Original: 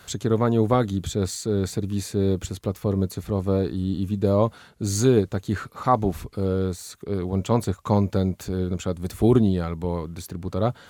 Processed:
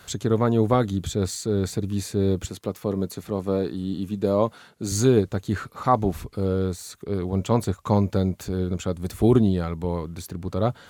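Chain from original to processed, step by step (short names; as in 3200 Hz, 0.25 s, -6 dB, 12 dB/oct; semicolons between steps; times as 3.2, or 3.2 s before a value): 2.47–4.92 Bessel high-pass 170 Hz, order 2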